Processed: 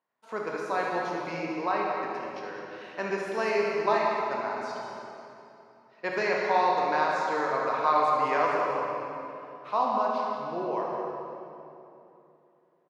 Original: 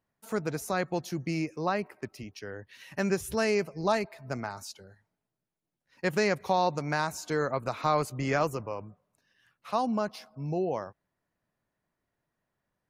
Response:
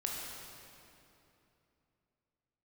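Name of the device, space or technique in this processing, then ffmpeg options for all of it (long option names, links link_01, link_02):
station announcement: -filter_complex "[0:a]highpass=370,lowpass=3600,equalizer=frequency=1000:width_type=o:width=0.21:gain=9,aecho=1:1:72.89|198.3:0.316|0.316[link_01];[1:a]atrim=start_sample=2205[link_02];[link_01][link_02]afir=irnorm=-1:irlink=0"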